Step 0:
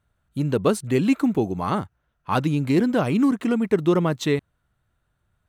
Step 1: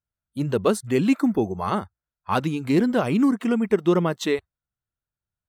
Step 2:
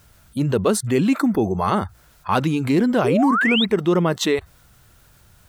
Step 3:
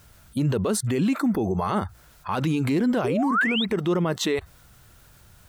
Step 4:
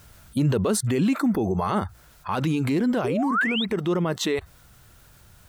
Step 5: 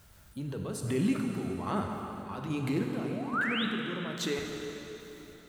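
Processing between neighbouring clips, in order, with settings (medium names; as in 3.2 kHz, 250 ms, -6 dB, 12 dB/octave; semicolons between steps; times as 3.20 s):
spectral noise reduction 21 dB
painted sound rise, 3.04–3.65 s, 360–4000 Hz -23 dBFS; level flattener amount 50%
peak limiter -16 dBFS, peak gain reduction 11 dB
gain riding within 4 dB 2 s
square tremolo 1.2 Hz, depth 60%, duty 40%; plate-style reverb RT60 3.9 s, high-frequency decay 0.85×, DRR 1.5 dB; trim -8 dB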